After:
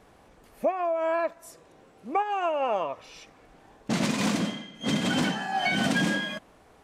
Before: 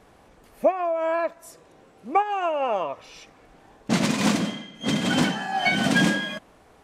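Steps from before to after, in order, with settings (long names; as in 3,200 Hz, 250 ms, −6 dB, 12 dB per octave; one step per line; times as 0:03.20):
brickwall limiter −14 dBFS, peak gain reduction 4.5 dB
level −2 dB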